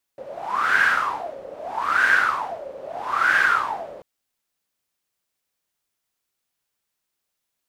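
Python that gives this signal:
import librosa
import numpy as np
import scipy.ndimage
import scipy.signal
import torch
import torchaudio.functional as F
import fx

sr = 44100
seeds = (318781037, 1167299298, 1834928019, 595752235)

y = fx.wind(sr, seeds[0], length_s=3.84, low_hz=530.0, high_hz=1600.0, q=12.0, gusts=3, swing_db=19)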